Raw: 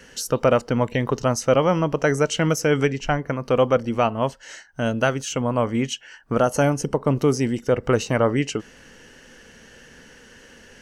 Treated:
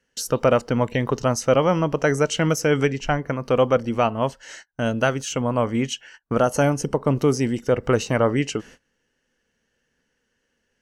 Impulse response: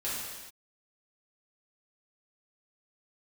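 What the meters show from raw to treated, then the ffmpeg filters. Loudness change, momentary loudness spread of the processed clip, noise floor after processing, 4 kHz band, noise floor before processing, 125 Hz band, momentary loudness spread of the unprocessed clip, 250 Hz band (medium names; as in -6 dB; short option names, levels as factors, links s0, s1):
0.0 dB, 8 LU, -73 dBFS, 0.0 dB, -49 dBFS, 0.0 dB, 8 LU, 0.0 dB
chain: -af "agate=range=0.0562:threshold=0.00794:ratio=16:detection=peak"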